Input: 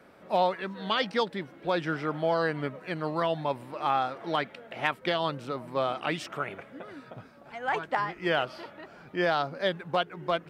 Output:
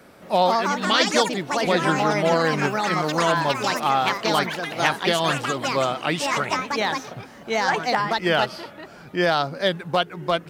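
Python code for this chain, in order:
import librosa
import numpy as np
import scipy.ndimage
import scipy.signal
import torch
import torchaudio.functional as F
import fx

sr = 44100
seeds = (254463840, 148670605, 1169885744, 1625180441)

y = fx.bass_treble(x, sr, bass_db=3, treble_db=9)
y = fx.echo_pitch(y, sr, ms=222, semitones=4, count=3, db_per_echo=-3.0)
y = y * 10.0 ** (5.5 / 20.0)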